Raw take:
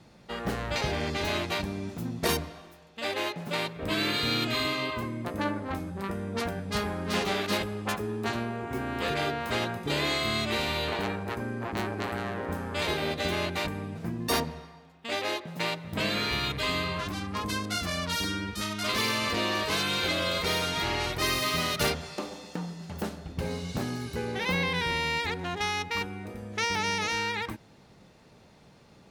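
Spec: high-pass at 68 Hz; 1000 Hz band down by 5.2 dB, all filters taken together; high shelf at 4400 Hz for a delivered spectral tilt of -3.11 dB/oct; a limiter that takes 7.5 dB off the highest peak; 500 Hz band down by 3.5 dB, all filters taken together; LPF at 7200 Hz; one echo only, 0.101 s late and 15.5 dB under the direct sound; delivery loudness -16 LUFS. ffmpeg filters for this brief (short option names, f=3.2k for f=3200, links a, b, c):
-af "highpass=68,lowpass=7.2k,equalizer=f=500:t=o:g=-3,equalizer=f=1k:t=o:g=-5.5,highshelf=f=4.4k:g=-4,alimiter=limit=-22.5dB:level=0:latency=1,aecho=1:1:101:0.168,volume=17.5dB"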